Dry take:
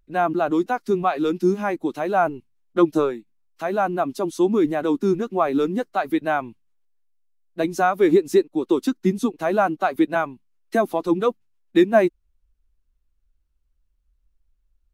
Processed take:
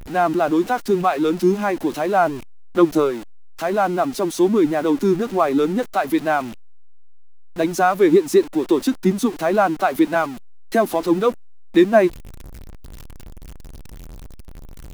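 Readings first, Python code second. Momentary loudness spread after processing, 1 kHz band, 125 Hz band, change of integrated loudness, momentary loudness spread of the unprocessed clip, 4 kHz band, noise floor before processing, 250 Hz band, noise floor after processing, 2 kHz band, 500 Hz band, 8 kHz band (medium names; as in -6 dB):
7 LU, +2.5 dB, +3.0 dB, +3.0 dB, 8 LU, +4.5 dB, -68 dBFS, +3.0 dB, -36 dBFS, +2.5 dB, +2.5 dB, +7.5 dB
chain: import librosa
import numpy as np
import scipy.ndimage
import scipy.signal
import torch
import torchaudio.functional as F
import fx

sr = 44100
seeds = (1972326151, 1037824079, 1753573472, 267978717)

y = x + 0.5 * 10.0 ** (-32.0 / 20.0) * np.sign(x)
y = F.gain(torch.from_numpy(y), 2.0).numpy()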